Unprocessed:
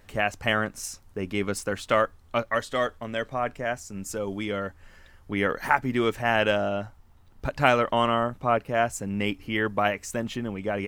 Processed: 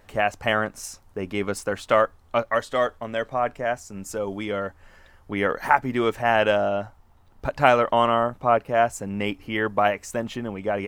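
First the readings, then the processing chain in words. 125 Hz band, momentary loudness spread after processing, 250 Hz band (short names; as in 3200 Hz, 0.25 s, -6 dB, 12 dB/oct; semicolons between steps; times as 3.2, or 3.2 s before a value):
-0.5 dB, 11 LU, +0.5 dB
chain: bell 760 Hz +6 dB 1.8 oct; gain -1 dB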